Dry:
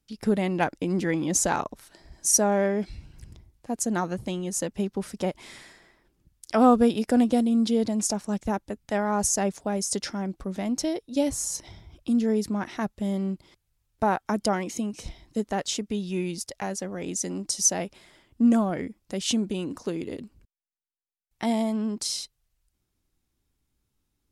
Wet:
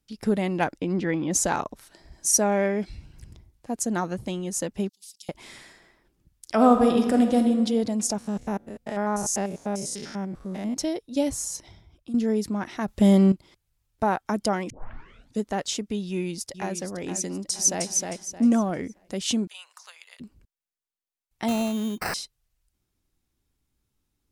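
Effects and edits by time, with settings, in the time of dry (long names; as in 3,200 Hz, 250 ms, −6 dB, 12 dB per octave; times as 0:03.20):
0:00.79–0:01.30: low-pass filter 5,200 Hz → 3,200 Hz
0:02.41–0:02.81: parametric band 2,300 Hz +7.5 dB 0.39 octaves
0:04.89–0:05.29: inverse Chebyshev high-pass filter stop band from 1,500 Hz, stop band 50 dB
0:06.54–0:07.48: thrown reverb, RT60 1.5 s, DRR 4.5 dB
0:08.18–0:10.77: spectrum averaged block by block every 100 ms
0:11.29–0:12.14: fade out, to −11.5 dB
0:12.88–0:13.32: clip gain +11 dB
0:14.70: tape start 0.70 s
0:16.07–0:16.75: delay throw 470 ms, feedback 45%, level −9 dB
0:17.36–0:17.85: delay throw 310 ms, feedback 30%, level −3.5 dB
0:19.47–0:20.20: Bessel high-pass filter 1,400 Hz, order 8
0:21.48–0:22.14: sample-rate reduction 3,400 Hz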